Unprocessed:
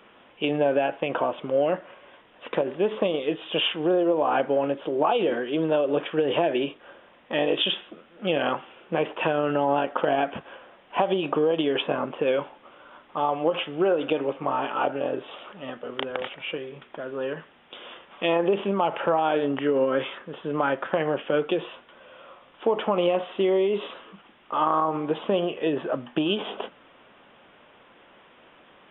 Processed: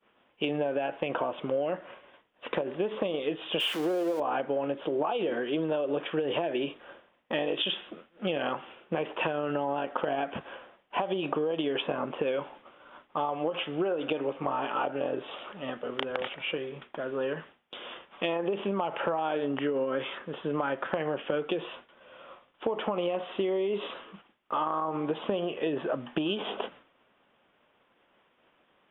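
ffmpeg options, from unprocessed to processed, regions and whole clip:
ffmpeg -i in.wav -filter_complex "[0:a]asettb=1/sr,asplit=3[link_01][link_02][link_03];[link_01]atrim=end=3.604[link_04];[link_02]atrim=start=3.6:end=4.2,asetpts=PTS-STARTPTS,afade=type=in:duration=0.004:curve=qsin,afade=type=out:start_time=0.596:duration=0.004:curve=qsin,aeval=exprs='val(0)+0.5*0.0282*sgn(val(0))':channel_layout=same,highpass=210[link_05];[link_03]atrim=start=4.196[link_06];[link_04][link_05]acrossfade=duration=0.004:curve1=hsin:curve2=qsin[link_07];[link_07][link_06]acrossfade=duration=0.004:curve1=qsin:curve2=hsin,agate=range=-33dB:threshold=-44dB:ratio=3:detection=peak,acompressor=threshold=-26dB:ratio=6" out.wav

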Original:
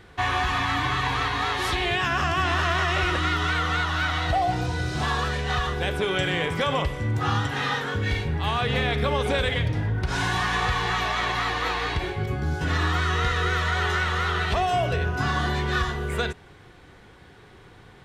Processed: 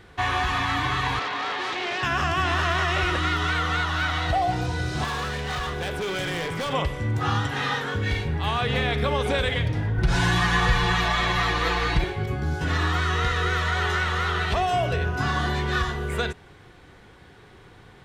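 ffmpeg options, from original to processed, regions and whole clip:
ffmpeg -i in.wav -filter_complex "[0:a]asettb=1/sr,asplit=3[link_01][link_02][link_03];[link_01]atrim=end=1.194[link_04];[link_02]atrim=start=1.19:end=2.03,asetpts=PTS-STARTPTS,afade=type=in:duration=0.004:curve=qsin,afade=type=out:start_time=0.836:duration=0.004:curve=qsin,aeval=exprs='0.0794*(abs(mod(val(0)/0.0794+3,4)-2)-1)':channel_layout=same,highpass=270,lowpass=4000[link_05];[link_03]atrim=start=2.026[link_06];[link_04][link_05]acrossfade=duration=0.004:curve1=hsin:curve2=qsin[link_07];[link_07][link_06]acrossfade=duration=0.004:curve1=qsin:curve2=hsin,asettb=1/sr,asplit=3[link_08][link_09][link_10];[link_08]atrim=end=5.044[link_11];[link_09]atrim=start=5.04:end=6.73,asetpts=PTS-STARTPTS,afade=type=in:duration=0.004:curve=qsin,afade=type=out:start_time=1.686:duration=0.004:curve=qsin,equalizer=frequency=83:width=4.4:gain=-6.5,volume=25.5dB,asoftclip=hard,volume=-25.5dB[link_12];[link_10]atrim=start=6.726[link_13];[link_11][link_12]acrossfade=duration=0.004:curve1=hsin:curve2=qsin[link_14];[link_14][link_13]acrossfade=duration=0.004:curve1=qsin:curve2=hsin,asettb=1/sr,asplit=3[link_15][link_16][link_17];[link_15]atrim=end=9.984[link_18];[link_16]atrim=start=9.98:end=12.04,asetpts=PTS-STARTPTS,afade=type=in:duration=0.004:curve=qsin,afade=type=out:start_time=2.056:duration=0.004:curve=qsin,lowshelf=frequency=130:gain=10,aecho=1:1:5.9:0.8,atrim=end_sample=90846[link_19];[link_17]atrim=start=12.036[link_20];[link_18][link_19]acrossfade=duration=0.004:curve1=hsin:curve2=qsin[link_21];[link_21][link_20]acrossfade=duration=0.004:curve1=qsin:curve2=hsin" out.wav

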